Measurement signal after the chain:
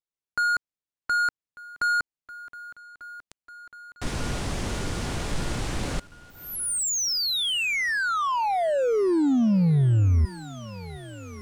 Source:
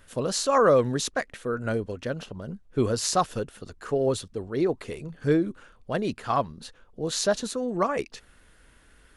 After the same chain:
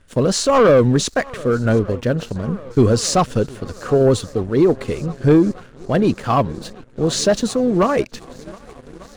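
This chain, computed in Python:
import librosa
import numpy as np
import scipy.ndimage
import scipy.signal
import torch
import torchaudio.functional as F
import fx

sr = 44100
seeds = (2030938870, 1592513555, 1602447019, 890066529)

p1 = scipy.signal.sosfilt(scipy.signal.butter(4, 9400.0, 'lowpass', fs=sr, output='sos'), x)
p2 = p1 + fx.echo_swing(p1, sr, ms=1195, ratio=1.5, feedback_pct=70, wet_db=-24.0, dry=0)
p3 = fx.leveller(p2, sr, passes=2)
y = fx.low_shelf(p3, sr, hz=450.0, db=7.5)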